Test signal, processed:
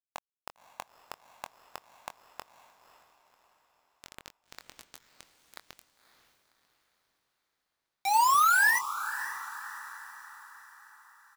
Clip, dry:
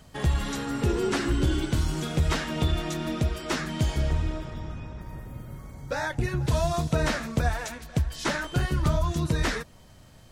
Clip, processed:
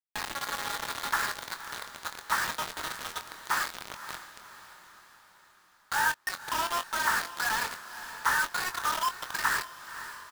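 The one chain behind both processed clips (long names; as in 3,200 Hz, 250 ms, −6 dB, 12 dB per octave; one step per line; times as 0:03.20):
loose part that buzzes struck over −25 dBFS, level −30 dBFS
elliptic band-pass filter 860–1,800 Hz, stop band 40 dB
bit reduction 6 bits
double-tracking delay 23 ms −10 dB
on a send: feedback delay with all-pass diffusion 543 ms, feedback 48%, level −12.5 dB
on the sum: level +5.5 dB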